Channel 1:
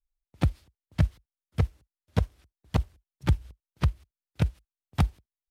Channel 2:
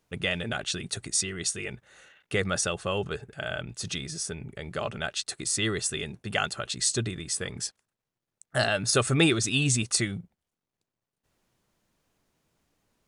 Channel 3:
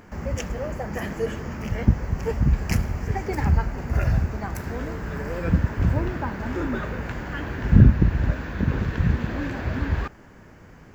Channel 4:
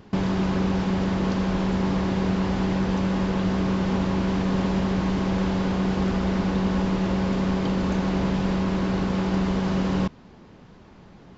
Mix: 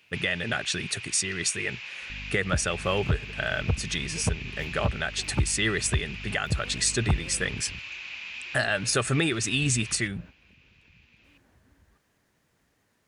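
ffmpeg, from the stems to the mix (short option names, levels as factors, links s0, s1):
-filter_complex "[0:a]afwtdn=0.0158,aeval=exprs='val(0)+0.01*(sin(2*PI*50*n/s)+sin(2*PI*2*50*n/s)/2+sin(2*PI*3*50*n/s)/3+sin(2*PI*4*50*n/s)/4+sin(2*PI*5*50*n/s)/5)':c=same,adelay=2100,volume=1.06[s0];[1:a]highpass=f=57:w=0.5412,highpass=f=57:w=1.3066,equalizer=f=1800:t=o:w=0.47:g=8,volume=1.33,asplit=2[s1][s2];[2:a]acompressor=threshold=0.0282:ratio=3,adelay=1900,volume=0.224[s3];[3:a]highpass=f=2500:t=q:w=9,volume=0.376[s4];[s2]apad=whole_len=566676[s5];[s3][s5]sidechaingate=range=0.141:threshold=0.00631:ratio=16:detection=peak[s6];[s0][s1][s6][s4]amix=inputs=4:normalize=0,alimiter=limit=0.211:level=0:latency=1:release=321"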